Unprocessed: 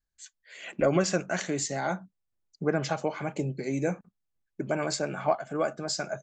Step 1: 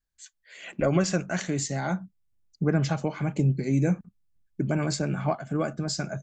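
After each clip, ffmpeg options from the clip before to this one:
-af "asubboost=boost=5:cutoff=250"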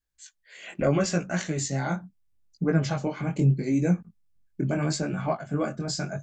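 -af "flanger=delay=17:depth=6.7:speed=0.77,volume=3dB"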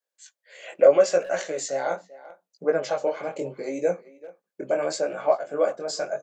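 -filter_complex "[0:a]highpass=f=530:t=q:w=4.9,asplit=2[a][b];[b]adelay=390,highpass=300,lowpass=3.4k,asoftclip=type=hard:threshold=-15.5dB,volume=-18dB[c];[a][c]amix=inputs=2:normalize=0,volume=-1dB"

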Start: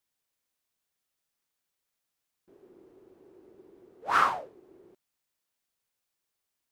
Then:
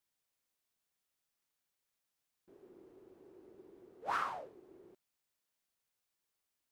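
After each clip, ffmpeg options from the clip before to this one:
-af "acompressor=threshold=-30dB:ratio=6,volume=-3dB"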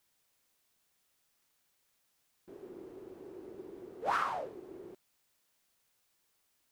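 -af "acompressor=threshold=-44dB:ratio=2,volume=10.5dB"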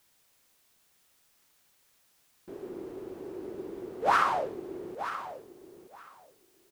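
-af "aecho=1:1:927|1854:0.266|0.0426,volume=8dB"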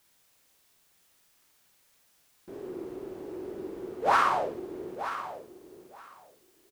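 -filter_complex "[0:a]asplit=2[a][b];[b]adelay=49,volume=-4.5dB[c];[a][c]amix=inputs=2:normalize=0"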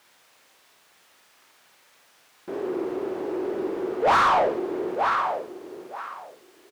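-filter_complex "[0:a]asplit=2[a][b];[b]highpass=f=720:p=1,volume=23dB,asoftclip=type=tanh:threshold=-11dB[c];[a][c]amix=inputs=2:normalize=0,lowpass=f=1.8k:p=1,volume=-6dB"

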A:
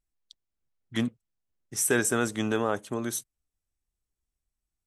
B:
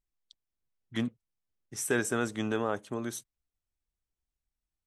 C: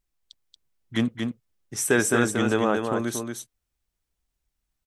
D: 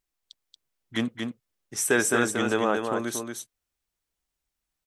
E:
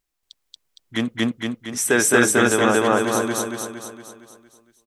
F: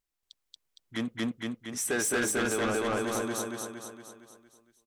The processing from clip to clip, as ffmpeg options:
-af "highshelf=f=7.8k:g=-9,volume=-3.5dB"
-af "aecho=1:1:231:0.562,volume=7.5dB"
-af "lowshelf=f=190:g=-10"
-af "aecho=1:1:231|462|693|924|1155|1386|1617:0.631|0.328|0.171|0.0887|0.0461|0.024|0.0125,volume=4dB"
-af "asoftclip=type=tanh:threshold=-16dB,volume=-7.5dB"

